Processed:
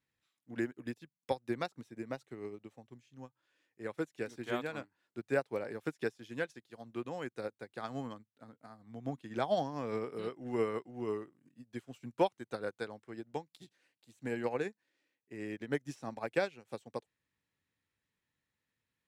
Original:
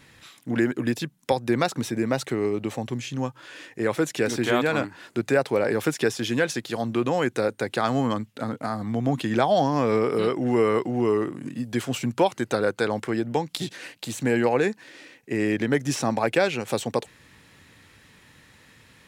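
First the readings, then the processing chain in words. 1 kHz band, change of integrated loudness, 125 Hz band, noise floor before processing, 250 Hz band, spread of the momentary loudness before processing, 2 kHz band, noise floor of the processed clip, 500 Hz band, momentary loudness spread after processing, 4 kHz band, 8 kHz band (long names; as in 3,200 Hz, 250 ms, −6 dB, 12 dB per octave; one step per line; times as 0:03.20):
−14.0 dB, −14.0 dB, −17.0 dB, −56 dBFS, −16.0 dB, 9 LU, −14.5 dB, below −85 dBFS, −13.5 dB, 17 LU, −17.5 dB, below −20 dB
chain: expander for the loud parts 2.5 to 1, over −34 dBFS
level −7 dB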